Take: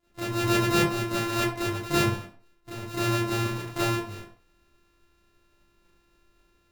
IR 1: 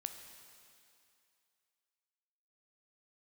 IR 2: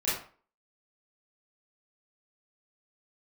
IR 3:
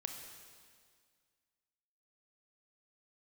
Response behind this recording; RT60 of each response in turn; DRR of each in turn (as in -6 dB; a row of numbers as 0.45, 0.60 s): 2; 2.5, 0.40, 1.9 s; 6.5, -11.0, 4.0 dB